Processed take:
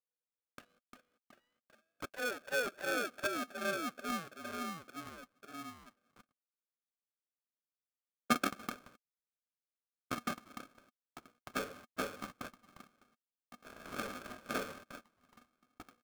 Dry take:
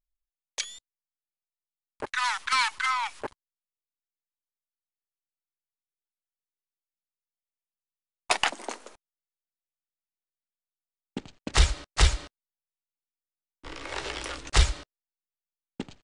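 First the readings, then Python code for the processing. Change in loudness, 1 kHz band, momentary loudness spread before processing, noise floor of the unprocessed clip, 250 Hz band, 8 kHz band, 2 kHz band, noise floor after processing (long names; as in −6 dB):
−12.0 dB, −9.0 dB, 17 LU, below −85 dBFS, +1.0 dB, −12.5 dB, −7.5 dB, below −85 dBFS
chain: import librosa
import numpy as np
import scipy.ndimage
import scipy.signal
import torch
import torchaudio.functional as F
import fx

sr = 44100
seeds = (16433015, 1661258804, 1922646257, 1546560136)

y = fx.echo_pitch(x, sr, ms=240, semitones=-3, count=3, db_per_echo=-6.0)
y = fx.formant_cascade(y, sr, vowel='a')
y = y * np.sign(np.sin(2.0 * np.pi * 490.0 * np.arange(len(y)) / sr))
y = F.gain(torch.from_numpy(y), 3.5).numpy()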